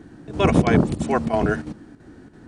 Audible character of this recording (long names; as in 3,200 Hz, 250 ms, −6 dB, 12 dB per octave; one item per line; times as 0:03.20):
chopped level 3 Hz, depth 60%, duty 85%